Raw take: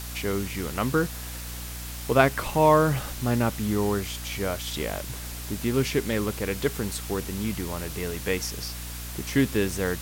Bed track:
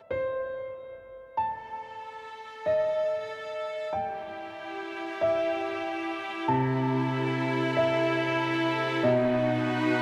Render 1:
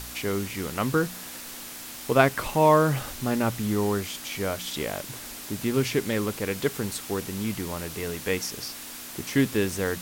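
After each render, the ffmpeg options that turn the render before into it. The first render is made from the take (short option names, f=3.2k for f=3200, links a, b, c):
-af "bandreject=f=60:t=h:w=4,bandreject=f=120:t=h:w=4,bandreject=f=180:t=h:w=4"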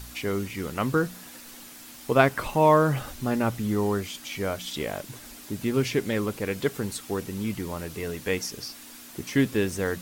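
-af "afftdn=nr=7:nf=-40"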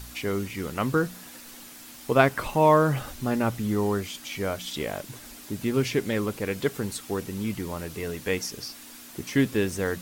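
-af anull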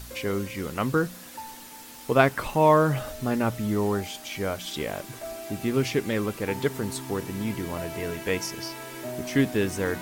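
-filter_complex "[1:a]volume=-12dB[a];[0:a][a]amix=inputs=2:normalize=0"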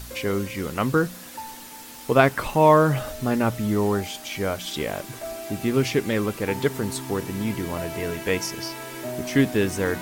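-af "volume=3dB,alimiter=limit=-3dB:level=0:latency=1"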